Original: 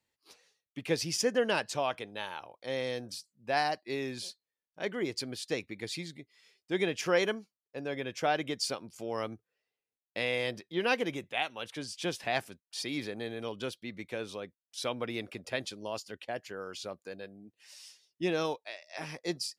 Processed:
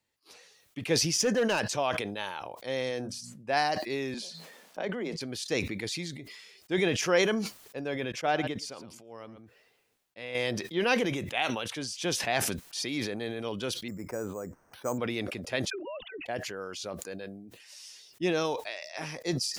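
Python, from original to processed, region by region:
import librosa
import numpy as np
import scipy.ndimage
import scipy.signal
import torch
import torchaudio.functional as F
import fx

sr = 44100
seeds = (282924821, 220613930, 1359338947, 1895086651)

y = fx.chain(x, sr, fx.highpass(hz=57.0, slope=12),
    fx.clip_hard(threshold_db=-23.5), at=(1.04, 1.77))
y = fx.chain(y, sr, fx.lowpass(hz=11000.0, slope=12),
    fx.peak_eq(hz=3900.0, db=-5.0, octaves=0.73),
    fx.hum_notches(base_hz=60, count=4), at=(2.89, 3.53))
y = fx.chain(y, sr, fx.cheby_ripple_highpass(hz=160.0, ripple_db=6),
    fx.high_shelf(hz=9400.0, db=-10.0),
    fx.pre_swell(db_per_s=69.0), at=(4.14, 5.21))
y = fx.chain(y, sr, fx.high_shelf(hz=4100.0, db=-5.0),
    fx.echo_single(ms=113, db=-17.5),
    fx.upward_expand(threshold_db=-39.0, expansion=2.5), at=(8.12, 10.35))
y = fx.chain(y, sr, fx.lowpass(hz=1500.0, slope=24),
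    fx.resample_bad(factor=6, down='none', up='hold'), at=(13.88, 14.98))
y = fx.chain(y, sr, fx.sine_speech(),
    fx.level_steps(step_db=10),
    fx.dispersion(late='lows', ms=60.0, hz=380.0), at=(15.7, 16.26))
y = fx.dynamic_eq(y, sr, hz=6100.0, q=4.2, threshold_db=-58.0, ratio=4.0, max_db=5)
y = fx.sustainer(y, sr, db_per_s=40.0)
y = F.gain(torch.from_numpy(y), 2.0).numpy()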